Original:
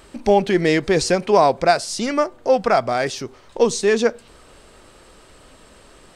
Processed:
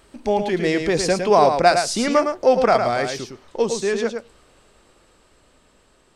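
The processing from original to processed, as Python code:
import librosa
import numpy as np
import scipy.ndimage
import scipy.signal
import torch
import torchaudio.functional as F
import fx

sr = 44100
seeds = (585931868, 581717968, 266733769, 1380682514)

p1 = fx.doppler_pass(x, sr, speed_mps=7, closest_m=6.4, pass_at_s=2.09)
p2 = p1 + fx.echo_single(p1, sr, ms=109, db=-6.5, dry=0)
y = F.gain(torch.from_numpy(p2), 1.5).numpy()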